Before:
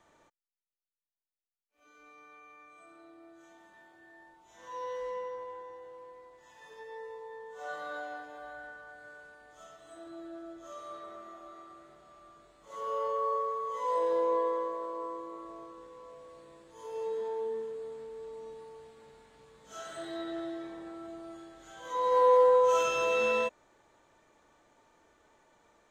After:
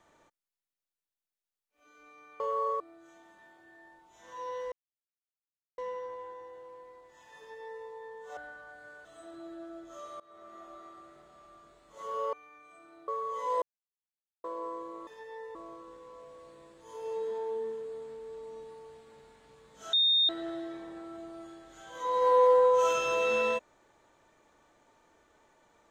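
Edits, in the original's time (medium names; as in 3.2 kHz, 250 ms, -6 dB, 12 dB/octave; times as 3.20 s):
2.40–3.15 s: swap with 13.06–13.46 s
5.07 s: insert silence 1.06 s
6.67–7.15 s: copy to 15.45 s
7.66–8.57 s: delete
9.25–9.78 s: delete
10.93–11.36 s: fade in, from -22 dB
14.00–14.82 s: mute
19.83–20.19 s: bleep 3.67 kHz -21.5 dBFS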